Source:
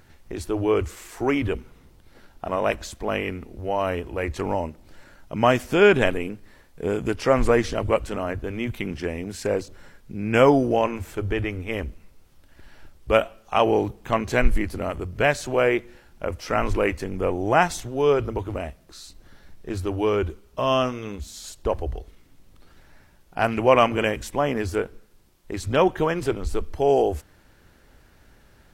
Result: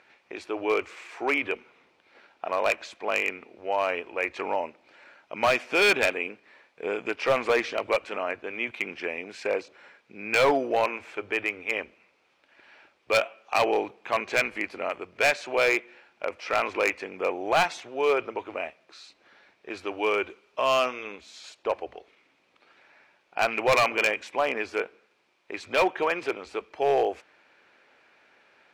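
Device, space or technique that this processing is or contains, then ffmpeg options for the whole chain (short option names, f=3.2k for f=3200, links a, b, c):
megaphone: -filter_complex "[0:a]asettb=1/sr,asplit=3[a][b][c];[a]atrim=end=19.744[d];[b]atrim=start=19.74:end=21.03,asetpts=PTS-STARTPTS,afade=t=in:d=0.004:c=qsin,afade=t=out:st=1.286:d=0.004:c=qsin,highshelf=f=2.8k:g=3.5[e];[c]atrim=start=21.026[f];[d][e]acrossfade=d=0.004:c1=hsin:c2=qsin[g];[g][f]acrossfade=d=0.004:c1=qsin:c2=hsin,highpass=500,lowpass=3.8k,equalizer=f=2.4k:t=o:w=0.25:g=10,asoftclip=type=hard:threshold=-16dB"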